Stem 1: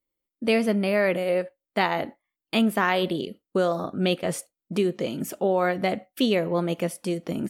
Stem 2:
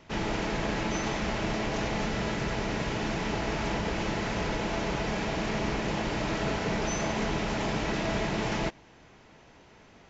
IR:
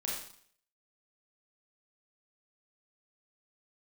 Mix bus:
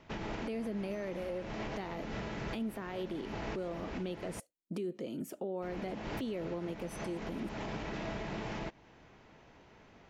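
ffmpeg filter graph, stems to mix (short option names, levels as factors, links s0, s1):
-filter_complex "[0:a]equalizer=f=320:t=o:w=1.7:g=7,acrossover=split=440[s0][s1];[s1]acompressor=threshold=0.0708:ratio=6[s2];[s0][s2]amix=inputs=2:normalize=0,volume=0.282,asplit=2[s3][s4];[1:a]lowpass=f=3600:p=1,volume=0.668,asplit=3[s5][s6][s7];[s5]atrim=end=4.4,asetpts=PTS-STARTPTS,afade=t=out:st=4.396:d=0.004:c=hsin[s8];[s6]atrim=start=4.4:end=5.62,asetpts=PTS-STARTPTS,volume=0[s9];[s7]atrim=start=5.62,asetpts=PTS-STARTPTS,afade=t=in:d=0.004:c=hsin[s10];[s8][s9][s10]concat=n=3:v=0:a=1[s11];[s4]apad=whole_len=445076[s12];[s11][s12]sidechaincompress=threshold=0.0141:ratio=5:attack=23:release=414[s13];[s3][s13]amix=inputs=2:normalize=0,alimiter=level_in=2:limit=0.0631:level=0:latency=1:release=209,volume=0.501"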